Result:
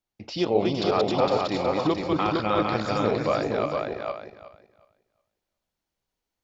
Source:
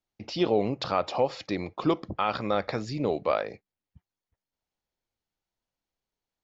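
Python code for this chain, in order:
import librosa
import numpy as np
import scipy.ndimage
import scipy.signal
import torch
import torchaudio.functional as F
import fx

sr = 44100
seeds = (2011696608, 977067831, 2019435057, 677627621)

p1 = fx.reverse_delay_fb(x, sr, ms=183, feedback_pct=43, wet_db=-1.5)
y = p1 + fx.echo_single(p1, sr, ms=460, db=-3.5, dry=0)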